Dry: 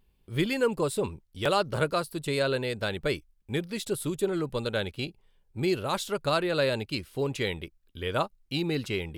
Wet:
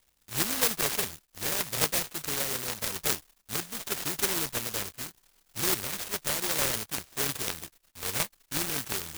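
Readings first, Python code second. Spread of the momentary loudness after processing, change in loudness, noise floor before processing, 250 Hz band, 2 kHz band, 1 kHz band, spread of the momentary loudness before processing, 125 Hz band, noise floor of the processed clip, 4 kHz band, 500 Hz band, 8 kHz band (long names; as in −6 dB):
9 LU, +0.5 dB, −68 dBFS, −8.5 dB, −1.5 dB, −4.5 dB, 8 LU, −8.5 dB, −70 dBFS, +1.5 dB, −10.5 dB, +13.0 dB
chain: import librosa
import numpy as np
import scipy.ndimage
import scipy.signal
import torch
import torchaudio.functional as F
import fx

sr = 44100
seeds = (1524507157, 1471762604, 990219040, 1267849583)

y = fx.peak_eq(x, sr, hz=7700.0, db=13.5, octaves=0.26)
y = fx.rotary_switch(y, sr, hz=0.9, then_hz=5.5, switch_at_s=5.93)
y = (np.kron(y[::8], np.eye(8)[0]) * 8)[:len(y)]
y = fx.noise_mod_delay(y, sr, seeds[0], noise_hz=1200.0, depth_ms=0.24)
y = y * 10.0 ** (-8.0 / 20.0)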